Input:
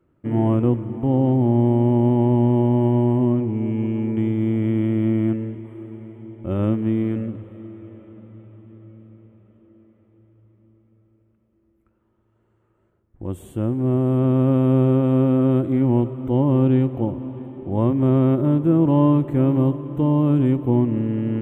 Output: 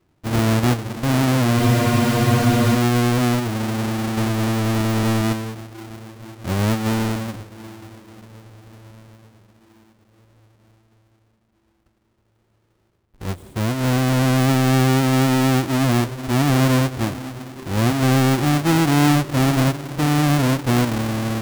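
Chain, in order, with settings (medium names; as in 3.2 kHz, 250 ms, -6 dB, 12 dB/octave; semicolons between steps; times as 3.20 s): square wave that keeps the level; spectral freeze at 1.60 s, 1.15 s; trim -4 dB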